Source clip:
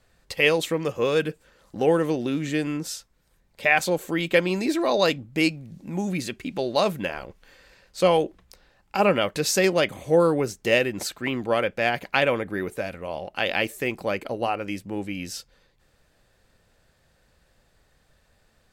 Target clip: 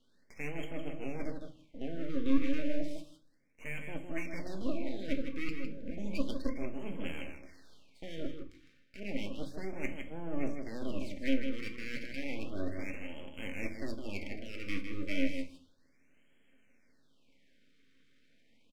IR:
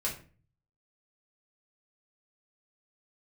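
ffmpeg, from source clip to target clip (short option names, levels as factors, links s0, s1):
-filter_complex "[0:a]deesser=0.95,lowshelf=f=120:g=-9.5,areverse,acompressor=threshold=0.0224:ratio=5,areverse,asplit=3[s0][s1][s2];[s0]bandpass=f=270:t=q:w=8,volume=1[s3];[s1]bandpass=f=2290:t=q:w=8,volume=0.501[s4];[s2]bandpass=f=3010:t=q:w=8,volume=0.355[s5];[s3][s4][s5]amix=inputs=3:normalize=0,aeval=exprs='max(val(0),0)':c=same,asplit=2[s6][s7];[s7]adelay=157.4,volume=0.501,highshelf=f=4000:g=-3.54[s8];[s6][s8]amix=inputs=2:normalize=0,asplit=2[s9][s10];[1:a]atrim=start_sample=2205[s11];[s10][s11]afir=irnorm=-1:irlink=0,volume=0.531[s12];[s9][s12]amix=inputs=2:normalize=0,afftfilt=real='re*(1-between(b*sr/1024,760*pow(4800/760,0.5+0.5*sin(2*PI*0.32*pts/sr))/1.41,760*pow(4800/760,0.5+0.5*sin(2*PI*0.32*pts/sr))*1.41))':imag='im*(1-between(b*sr/1024,760*pow(4800/760,0.5+0.5*sin(2*PI*0.32*pts/sr))/1.41,760*pow(4800/760,0.5+0.5*sin(2*PI*0.32*pts/sr))*1.41))':win_size=1024:overlap=0.75,volume=2.99"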